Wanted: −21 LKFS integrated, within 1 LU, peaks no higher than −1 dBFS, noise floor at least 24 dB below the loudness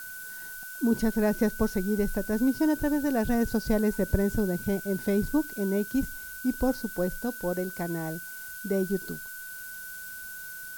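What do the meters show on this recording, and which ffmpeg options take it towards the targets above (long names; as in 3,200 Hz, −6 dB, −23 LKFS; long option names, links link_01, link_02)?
interfering tone 1,500 Hz; level of the tone −40 dBFS; background noise floor −41 dBFS; target noise floor −53 dBFS; integrated loudness −29.0 LKFS; sample peak −12.0 dBFS; target loudness −21.0 LKFS
→ -af "bandreject=frequency=1500:width=30"
-af "afftdn=noise_reduction=12:noise_floor=-41"
-af "volume=8dB"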